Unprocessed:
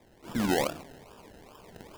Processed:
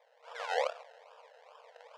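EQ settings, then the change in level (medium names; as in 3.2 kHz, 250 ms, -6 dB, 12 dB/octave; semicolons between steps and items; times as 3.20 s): brick-wall FIR high-pass 450 Hz; tape spacing loss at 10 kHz 33 dB; treble shelf 3.3 kHz +11 dB; 0.0 dB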